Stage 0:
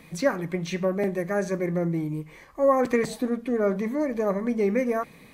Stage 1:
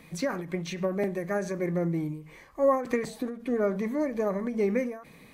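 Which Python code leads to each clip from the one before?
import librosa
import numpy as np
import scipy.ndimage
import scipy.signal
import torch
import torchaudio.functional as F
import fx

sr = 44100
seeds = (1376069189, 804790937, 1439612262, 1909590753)

y = fx.end_taper(x, sr, db_per_s=110.0)
y = F.gain(torch.from_numpy(y), -2.0).numpy()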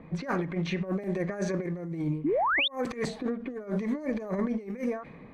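y = fx.env_lowpass(x, sr, base_hz=1000.0, full_db=-22.0)
y = fx.over_compress(y, sr, threshold_db=-32.0, ratio=-0.5)
y = fx.spec_paint(y, sr, seeds[0], shape='rise', start_s=2.24, length_s=0.44, low_hz=260.0, high_hz=3800.0, level_db=-27.0)
y = F.gain(torch.from_numpy(y), 1.5).numpy()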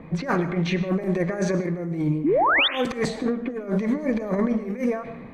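y = fx.rev_freeverb(x, sr, rt60_s=0.74, hf_ratio=0.5, predelay_ms=70, drr_db=12.0)
y = F.gain(torch.from_numpy(y), 6.5).numpy()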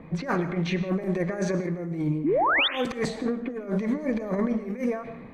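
y = x + 10.0 ** (-23.0 / 20.0) * np.pad(x, (int(170 * sr / 1000.0), 0))[:len(x)]
y = F.gain(torch.from_numpy(y), -3.0).numpy()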